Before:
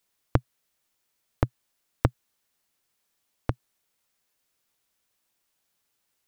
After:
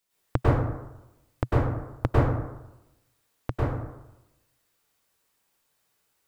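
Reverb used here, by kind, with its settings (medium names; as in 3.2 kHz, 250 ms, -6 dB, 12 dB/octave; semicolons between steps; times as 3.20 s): plate-style reverb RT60 0.96 s, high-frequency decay 0.45×, pre-delay 90 ms, DRR -9 dB; trim -4 dB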